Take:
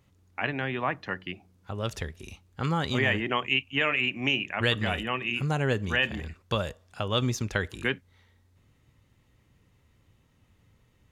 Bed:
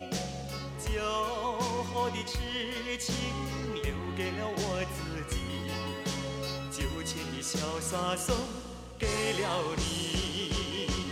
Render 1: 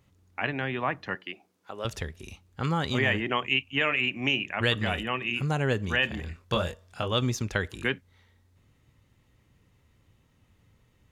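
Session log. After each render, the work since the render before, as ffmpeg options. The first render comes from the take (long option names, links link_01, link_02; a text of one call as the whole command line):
ffmpeg -i in.wav -filter_complex "[0:a]asettb=1/sr,asplit=3[link_01][link_02][link_03];[link_01]atrim=end=1.154[link_04];[link_02]atrim=start=1.15:end=1.85,asetpts=PTS-STARTPTS,afade=type=in:duration=0.004:curve=qsin,afade=type=out:start_time=0.696:duration=0.004:curve=qsin,highpass=350[link_05];[link_03]atrim=start=1.846[link_06];[link_04][link_05]acrossfade=duration=0.004:curve1=hsin:curve2=qsin[link_07];[link_07][link_06]acrossfade=duration=0.004:curve1=qsin:curve2=hsin,asettb=1/sr,asplit=3[link_08][link_09][link_10];[link_08]atrim=end=6.254[link_11];[link_09]atrim=start=6.25:end=7.13,asetpts=PTS-STARTPTS,afade=type=in:duration=0.004:curve=qsin,afade=type=out:start_time=0.876:duration=0.004:curve=qsin,asplit=2[link_12][link_13];[link_13]adelay=23,volume=-4dB[link_14];[link_12][link_14]amix=inputs=2:normalize=0,atrim=end_sample=38808[link_15];[link_10]atrim=start=7.126[link_16];[link_11][link_15]acrossfade=duration=0.004:curve1=hsin:curve2=qsin[link_17];[link_17][link_16]acrossfade=duration=0.004:curve1=qsin:curve2=hsin" out.wav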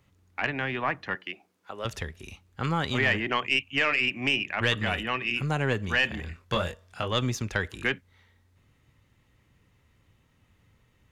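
ffmpeg -i in.wav -filter_complex "[0:a]aeval=exprs='(tanh(5.01*val(0)+0.3)-tanh(0.3))/5.01':channel_layout=same,acrossover=split=410|2400[link_01][link_02][link_03];[link_02]crystalizer=i=5:c=0[link_04];[link_01][link_04][link_03]amix=inputs=3:normalize=0" out.wav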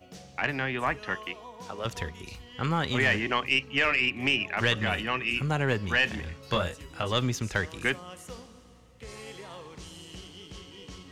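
ffmpeg -i in.wav -i bed.wav -filter_complex "[1:a]volume=-13dB[link_01];[0:a][link_01]amix=inputs=2:normalize=0" out.wav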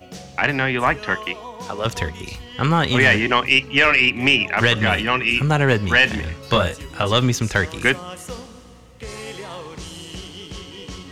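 ffmpeg -i in.wav -af "volume=10dB,alimiter=limit=-2dB:level=0:latency=1" out.wav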